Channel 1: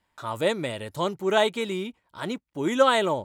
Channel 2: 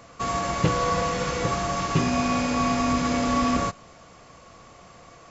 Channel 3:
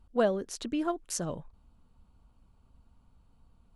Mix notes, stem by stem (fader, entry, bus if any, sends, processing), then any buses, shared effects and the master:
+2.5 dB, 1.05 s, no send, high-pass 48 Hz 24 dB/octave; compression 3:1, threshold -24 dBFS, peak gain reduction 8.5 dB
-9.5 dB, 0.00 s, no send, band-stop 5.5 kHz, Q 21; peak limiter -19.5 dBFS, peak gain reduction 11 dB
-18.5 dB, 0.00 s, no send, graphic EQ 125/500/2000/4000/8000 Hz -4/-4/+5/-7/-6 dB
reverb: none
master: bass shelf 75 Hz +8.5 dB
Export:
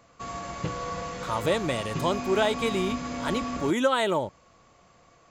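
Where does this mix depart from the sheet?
stem 2: missing peak limiter -19.5 dBFS, peak gain reduction 11 dB; stem 3: muted; master: missing bass shelf 75 Hz +8.5 dB

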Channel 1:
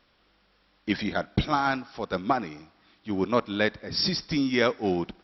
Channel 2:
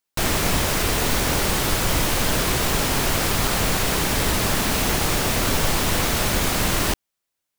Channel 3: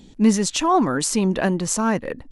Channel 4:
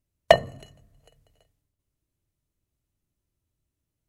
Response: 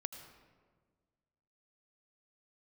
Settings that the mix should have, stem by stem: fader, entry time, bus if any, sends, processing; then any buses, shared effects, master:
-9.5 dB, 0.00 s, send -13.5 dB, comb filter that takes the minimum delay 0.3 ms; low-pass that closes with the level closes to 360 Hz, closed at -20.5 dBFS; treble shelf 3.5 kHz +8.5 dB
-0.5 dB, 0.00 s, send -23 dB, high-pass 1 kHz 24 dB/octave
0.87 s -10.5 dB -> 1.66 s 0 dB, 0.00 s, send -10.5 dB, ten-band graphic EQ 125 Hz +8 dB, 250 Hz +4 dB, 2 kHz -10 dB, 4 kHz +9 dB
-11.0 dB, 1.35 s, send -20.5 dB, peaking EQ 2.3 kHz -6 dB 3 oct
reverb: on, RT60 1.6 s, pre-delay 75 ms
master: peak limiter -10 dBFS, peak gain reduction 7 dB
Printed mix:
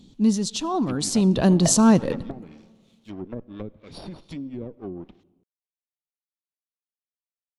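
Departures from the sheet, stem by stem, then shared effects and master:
stem 2: muted; master: missing peak limiter -10 dBFS, peak gain reduction 7 dB

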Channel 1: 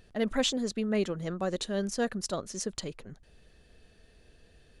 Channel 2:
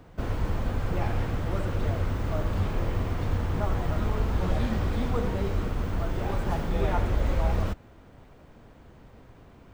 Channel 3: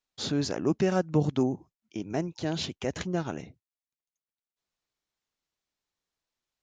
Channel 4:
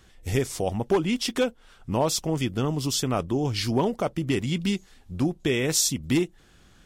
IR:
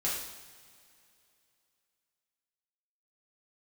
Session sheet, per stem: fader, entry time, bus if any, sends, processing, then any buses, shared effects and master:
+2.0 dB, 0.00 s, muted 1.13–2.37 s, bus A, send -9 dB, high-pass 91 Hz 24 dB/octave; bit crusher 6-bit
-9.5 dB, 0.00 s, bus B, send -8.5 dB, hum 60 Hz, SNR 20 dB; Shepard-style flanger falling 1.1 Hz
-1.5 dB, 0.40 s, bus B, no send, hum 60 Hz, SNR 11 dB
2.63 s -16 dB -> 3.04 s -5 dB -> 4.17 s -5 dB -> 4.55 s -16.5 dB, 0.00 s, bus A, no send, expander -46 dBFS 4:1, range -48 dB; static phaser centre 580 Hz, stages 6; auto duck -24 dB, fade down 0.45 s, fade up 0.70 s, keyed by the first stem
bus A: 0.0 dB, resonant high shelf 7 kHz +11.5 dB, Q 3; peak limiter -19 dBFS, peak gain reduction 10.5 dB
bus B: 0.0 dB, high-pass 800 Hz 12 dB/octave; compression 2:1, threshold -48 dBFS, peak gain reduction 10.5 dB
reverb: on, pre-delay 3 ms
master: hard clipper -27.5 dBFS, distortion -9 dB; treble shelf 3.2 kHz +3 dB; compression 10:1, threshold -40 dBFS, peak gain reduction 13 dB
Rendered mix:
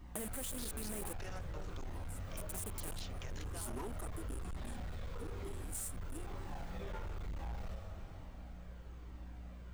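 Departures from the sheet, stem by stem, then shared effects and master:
stem 1: send off; stem 3 -1.5 dB -> +9.0 dB; reverb return +10.0 dB

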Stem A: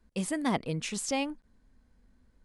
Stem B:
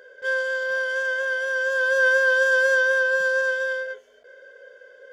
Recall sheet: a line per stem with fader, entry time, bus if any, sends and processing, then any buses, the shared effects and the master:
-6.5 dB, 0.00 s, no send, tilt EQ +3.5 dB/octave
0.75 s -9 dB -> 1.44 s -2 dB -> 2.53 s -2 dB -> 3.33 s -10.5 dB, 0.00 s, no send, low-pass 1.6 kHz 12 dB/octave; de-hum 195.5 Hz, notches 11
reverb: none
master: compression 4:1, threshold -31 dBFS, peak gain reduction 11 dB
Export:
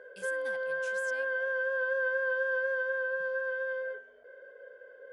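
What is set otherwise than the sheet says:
stem A -6.5 dB -> -17.5 dB; stem B -9.0 dB -> -1.0 dB

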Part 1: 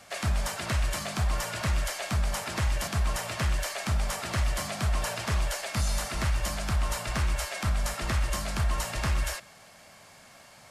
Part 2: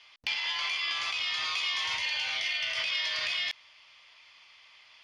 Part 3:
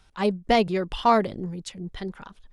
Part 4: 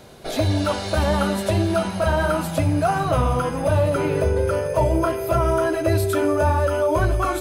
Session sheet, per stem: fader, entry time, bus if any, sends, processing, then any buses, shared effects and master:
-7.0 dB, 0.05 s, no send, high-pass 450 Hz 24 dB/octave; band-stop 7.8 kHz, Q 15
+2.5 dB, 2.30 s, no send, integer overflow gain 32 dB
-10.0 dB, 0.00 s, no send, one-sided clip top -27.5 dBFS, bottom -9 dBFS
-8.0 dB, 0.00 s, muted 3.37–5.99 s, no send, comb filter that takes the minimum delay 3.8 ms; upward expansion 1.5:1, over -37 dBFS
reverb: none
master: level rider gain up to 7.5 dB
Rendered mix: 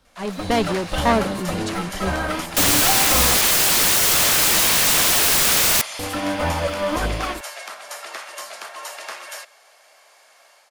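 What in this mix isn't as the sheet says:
stem 2 +2.5 dB -> +12.5 dB; stem 3 -10.0 dB -> -3.0 dB

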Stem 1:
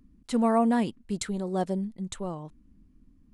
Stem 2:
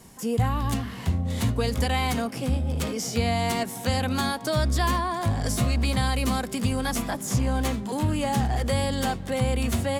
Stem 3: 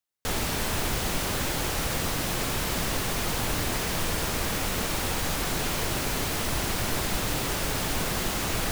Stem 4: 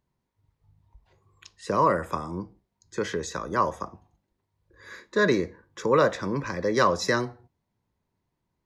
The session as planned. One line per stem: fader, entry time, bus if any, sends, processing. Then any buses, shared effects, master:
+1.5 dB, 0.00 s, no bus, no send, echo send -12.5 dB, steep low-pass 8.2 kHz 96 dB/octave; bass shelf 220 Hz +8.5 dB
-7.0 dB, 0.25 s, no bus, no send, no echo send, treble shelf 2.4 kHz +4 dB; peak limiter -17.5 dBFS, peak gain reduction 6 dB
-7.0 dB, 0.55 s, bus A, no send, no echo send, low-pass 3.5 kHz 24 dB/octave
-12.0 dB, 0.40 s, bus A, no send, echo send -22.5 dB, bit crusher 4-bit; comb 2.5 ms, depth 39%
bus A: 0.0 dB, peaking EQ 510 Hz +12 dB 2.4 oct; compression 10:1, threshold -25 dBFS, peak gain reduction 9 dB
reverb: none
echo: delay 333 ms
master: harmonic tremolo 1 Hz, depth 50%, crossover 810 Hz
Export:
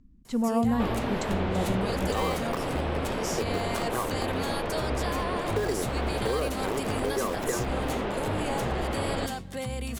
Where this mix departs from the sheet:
stem 1 +1.5 dB -> -5.5 dB; master: missing harmonic tremolo 1 Hz, depth 50%, crossover 810 Hz

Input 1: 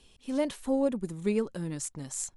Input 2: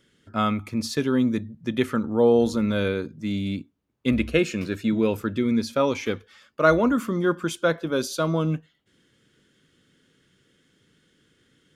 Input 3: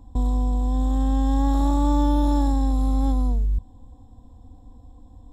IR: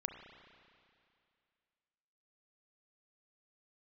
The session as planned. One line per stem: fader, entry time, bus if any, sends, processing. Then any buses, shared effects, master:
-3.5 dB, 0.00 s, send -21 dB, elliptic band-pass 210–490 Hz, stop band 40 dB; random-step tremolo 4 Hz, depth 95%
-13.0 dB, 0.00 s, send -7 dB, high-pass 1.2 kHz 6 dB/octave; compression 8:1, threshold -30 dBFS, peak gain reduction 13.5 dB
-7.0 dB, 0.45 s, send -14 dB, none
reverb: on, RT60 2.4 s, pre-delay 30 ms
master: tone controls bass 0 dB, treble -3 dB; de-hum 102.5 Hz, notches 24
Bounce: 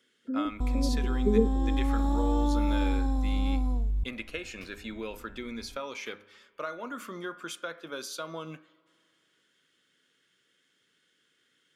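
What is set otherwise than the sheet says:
stem 1 -3.5 dB -> +5.0 dB; stem 2 -13.0 dB -> -3.5 dB; reverb return -8.0 dB

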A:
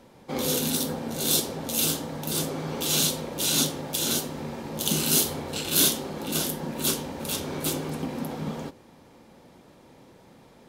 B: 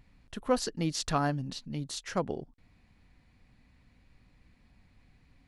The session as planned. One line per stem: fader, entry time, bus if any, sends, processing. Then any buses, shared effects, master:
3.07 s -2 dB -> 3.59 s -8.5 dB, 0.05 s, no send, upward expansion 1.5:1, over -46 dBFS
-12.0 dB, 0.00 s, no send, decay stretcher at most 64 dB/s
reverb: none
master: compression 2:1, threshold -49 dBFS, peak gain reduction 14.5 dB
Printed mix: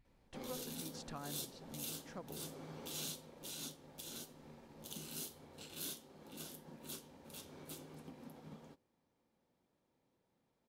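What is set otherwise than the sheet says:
stem A -2.0 dB -> -8.0 dB; stem B: missing decay stretcher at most 64 dB/s

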